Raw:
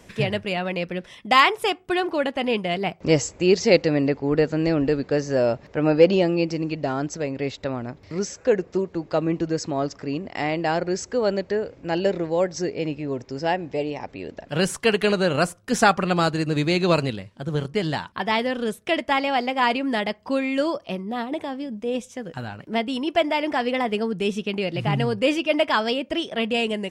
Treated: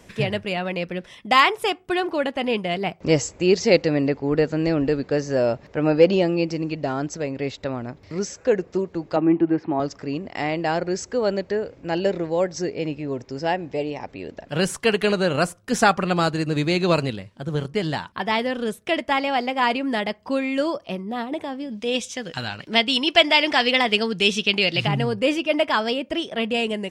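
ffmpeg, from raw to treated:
ffmpeg -i in.wav -filter_complex "[0:a]asettb=1/sr,asplit=3[link_01][link_02][link_03];[link_01]atrim=end=9.164[link_04];[link_02]atrim=start=9.16:end=9.8,asetpts=PTS-STARTPTS,afade=type=in:duration=0.004:curve=qsin,afade=type=out:start_time=0.636:duration=0.004:curve=qsin,highpass=130,equalizer=frequency=330:width_type=q:width=4:gain=8,equalizer=frequency=510:width_type=q:width=4:gain=-7,equalizer=frequency=820:width_type=q:width=4:gain=8,lowpass=frequency=2700:width=0.5412,lowpass=frequency=2700:width=1.3066[link_05];[link_03]atrim=start=9.796[link_06];[link_04][link_05]acrossfade=duration=0.004:curve1=hsin:curve2=qsin[link_07];[link_07][link_06]acrossfade=duration=0.004:curve1=qsin:curve2=hsin,asplit=3[link_08][link_09][link_10];[link_08]afade=type=out:start_time=21.69:duration=0.02[link_11];[link_09]equalizer=frequency=4000:width=0.53:gain=15,afade=type=in:start_time=21.69:duration=0.02,afade=type=out:start_time=24.86:duration=0.02[link_12];[link_10]afade=type=in:start_time=24.86:duration=0.02[link_13];[link_11][link_12][link_13]amix=inputs=3:normalize=0" out.wav

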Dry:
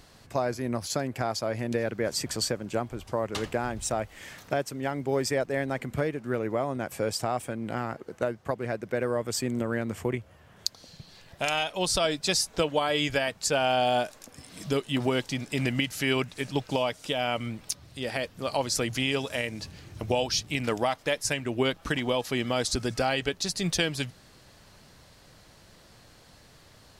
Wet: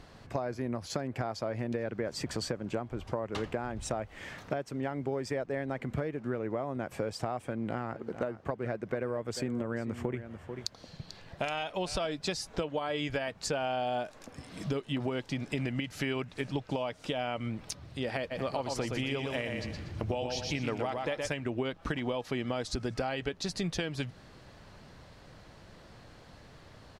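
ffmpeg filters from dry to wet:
ffmpeg -i in.wav -filter_complex "[0:a]asplit=3[link_01][link_02][link_03];[link_01]afade=type=out:start_time=7.94:duration=0.02[link_04];[link_02]aecho=1:1:441:0.178,afade=type=in:start_time=7.94:duration=0.02,afade=type=out:start_time=12.1:duration=0.02[link_05];[link_03]afade=type=in:start_time=12.1:duration=0.02[link_06];[link_04][link_05][link_06]amix=inputs=3:normalize=0,asplit=3[link_07][link_08][link_09];[link_07]afade=type=out:start_time=18.3:duration=0.02[link_10];[link_08]aecho=1:1:119|238|357|476:0.531|0.17|0.0544|0.0174,afade=type=in:start_time=18.3:duration=0.02,afade=type=out:start_time=21.27:duration=0.02[link_11];[link_09]afade=type=in:start_time=21.27:duration=0.02[link_12];[link_10][link_11][link_12]amix=inputs=3:normalize=0,aemphasis=mode=reproduction:type=75kf,acompressor=threshold=-33dB:ratio=6,volume=3dB" out.wav

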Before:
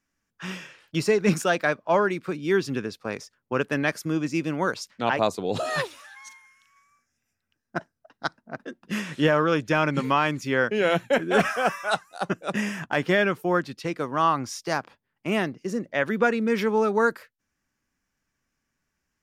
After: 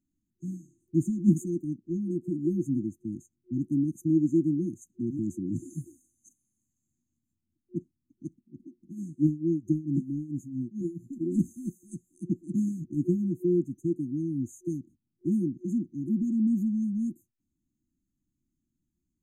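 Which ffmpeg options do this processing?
ffmpeg -i in.wav -filter_complex "[0:a]asettb=1/sr,asplit=3[link_01][link_02][link_03];[link_01]atrim=end=8.394[link_04];[link_02]atrim=start=8.39:end=11.21,asetpts=PTS-STARTPTS,afade=type=in:duration=0.004:curve=qsin,afade=type=out:start_time=2.816:duration=0.004:curve=qsin,tremolo=f=4.5:d=0.85[link_05];[link_03]atrim=start=11.206[link_06];[link_04][link_05]acrossfade=duration=0.004:curve1=hsin:curve2=qsin[link_07];[link_07][link_06]acrossfade=duration=0.004:curve1=qsin:curve2=hsin,highshelf=frequency=2400:gain=-11.5,afftfilt=real='re*(1-between(b*sr/4096,360,6100))':imag='im*(1-between(b*sr/4096,360,6100))':win_size=4096:overlap=0.75,equalizer=frequency=1200:width=0.42:gain=10.5" out.wav

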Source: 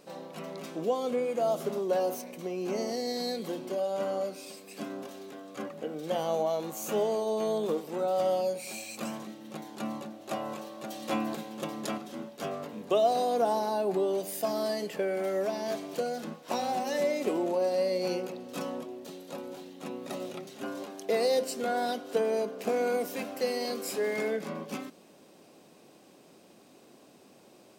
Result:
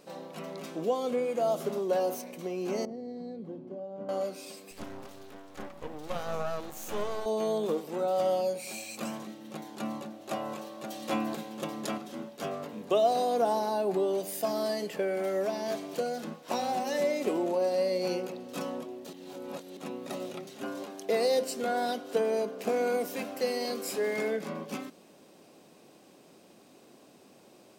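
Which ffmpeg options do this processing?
ffmpeg -i in.wav -filter_complex "[0:a]asettb=1/sr,asplit=3[link_01][link_02][link_03];[link_01]atrim=end=2.854[link_04];[link_02]atrim=start=2.85:end=4.09,asetpts=PTS-STARTPTS,afade=type=in:duration=0.004:curve=qsin,afade=type=out:start_time=1.236:duration=0.004:curve=qsin,bandpass=frequency=110:width_type=q:width=0.59[link_05];[link_03]atrim=start=4.086[link_06];[link_04][link_05]acrossfade=duration=0.004:curve1=hsin:curve2=qsin[link_07];[link_07][link_06]acrossfade=duration=0.004:curve1=qsin:curve2=hsin,asettb=1/sr,asplit=3[link_08][link_09][link_10];[link_08]atrim=end=4.714[link_11];[link_09]atrim=start=4.71:end=7.26,asetpts=PTS-STARTPTS,afade=type=in:duration=0.004:curve=qsin,afade=type=out:start_time=2.546:duration=0.004:curve=qsin,aeval=exprs='max(val(0),0)':channel_layout=same[link_12];[link_10]atrim=start=7.256[link_13];[link_11][link_12]acrossfade=duration=0.004:curve1=hsin:curve2=qsin[link_14];[link_14][link_13]acrossfade=duration=0.004:curve1=qsin:curve2=hsin,asplit=3[link_15][link_16][link_17];[link_15]atrim=end=19.132[link_18];[link_16]atrim=start=19.128:end=19.772,asetpts=PTS-STARTPTS,areverse[link_19];[link_17]atrim=start=19.768[link_20];[link_18][link_19]acrossfade=duration=0.004:curve1=hsin:curve2=hsin[link_21];[link_21][link_20]acrossfade=duration=0.004:curve1=hsin:curve2=hsin" out.wav

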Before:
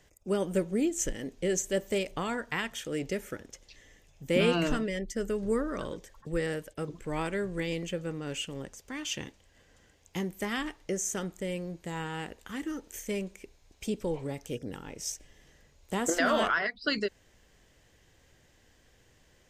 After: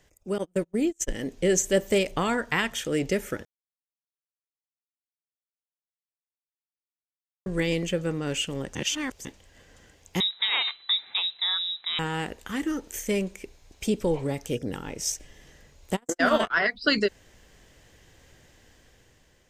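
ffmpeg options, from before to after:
ffmpeg -i in.wav -filter_complex "[0:a]asettb=1/sr,asplit=3[link_01][link_02][link_03];[link_01]atrim=end=0.384[link_04];[link_02]atrim=start=0.38:end=1.1,asetpts=PTS-STARTPTS,afade=type=in:duration=0.004:curve=qsin,afade=type=out:start_time=0.716:duration=0.004:curve=qsin,agate=range=-34dB:threshold=-31dB:ratio=16:release=100:detection=peak[link_05];[link_03]atrim=start=1.096[link_06];[link_04][link_05]acrossfade=duration=0.004:curve1=hsin:curve2=qsin[link_07];[link_07][link_06]acrossfade=duration=0.004:curve1=qsin:curve2=hsin,asettb=1/sr,asplit=3[link_08][link_09][link_10];[link_08]atrim=end=10.204[link_11];[link_09]atrim=start=10.2:end=11.99,asetpts=PTS-STARTPTS,afade=type=in:duration=0.004:curve=qsin,afade=type=out:start_time=1.786:duration=0.004:curve=qsin,lowpass=frequency=3400:width_type=q:width=0.5098,lowpass=frequency=3400:width_type=q:width=0.6013,lowpass=frequency=3400:width_type=q:width=0.9,lowpass=frequency=3400:width_type=q:width=2.563,afreqshift=-4000[link_12];[link_10]atrim=start=11.986[link_13];[link_11][link_12]acrossfade=duration=0.004:curve1=hsin:curve2=qsin[link_14];[link_14][link_13]acrossfade=duration=0.004:curve1=qsin:curve2=hsin,asplit=3[link_15][link_16][link_17];[link_15]afade=type=out:start_time=15.95:duration=0.02[link_18];[link_16]agate=range=-51dB:threshold=-26dB:ratio=16:release=100:detection=peak,afade=type=in:start_time=15.95:duration=0.02,afade=type=out:start_time=16.55:duration=0.02[link_19];[link_17]afade=type=in:start_time=16.55:duration=0.02[link_20];[link_18][link_19][link_20]amix=inputs=3:normalize=0,asplit=5[link_21][link_22][link_23][link_24][link_25];[link_21]atrim=end=3.45,asetpts=PTS-STARTPTS,afade=type=out:start_time=3.446:duration=0.004:curve=hsin[link_26];[link_22]atrim=start=3.45:end=7.46,asetpts=PTS-STARTPTS,volume=0[link_27];[link_23]atrim=start=7.46:end=8.752,asetpts=PTS-STARTPTS,afade=type=in:duration=0.004:curve=hsin[link_28];[link_24]atrim=start=8.748:end=9.252,asetpts=PTS-STARTPTS,areverse[link_29];[link_25]atrim=start=9.248[link_30];[link_26][link_27][link_28]concat=n=3:v=0:a=1[link_31];[link_31][link_29]acrossfade=duration=0.004:curve1=hsin:curve2=hsin[link_32];[link_32][link_30]acrossfade=duration=0.004:curve1=hsin:curve2=hsin,dynaudnorm=framelen=400:gausssize=5:maxgain=7dB" out.wav

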